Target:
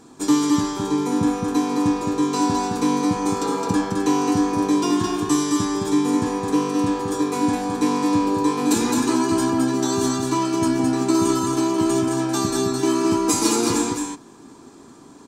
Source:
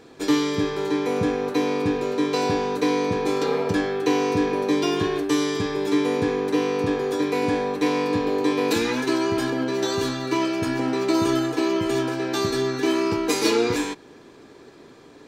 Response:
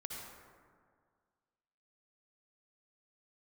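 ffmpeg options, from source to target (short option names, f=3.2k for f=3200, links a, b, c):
-af "equalizer=f=250:t=o:w=1:g=7,equalizer=f=500:t=o:w=1:g=-9,equalizer=f=1k:t=o:w=1:g=7,equalizer=f=2k:t=o:w=1:g=-8,equalizer=f=4k:t=o:w=1:g=-4,equalizer=f=8k:t=o:w=1:g=12,aecho=1:1:214:0.631"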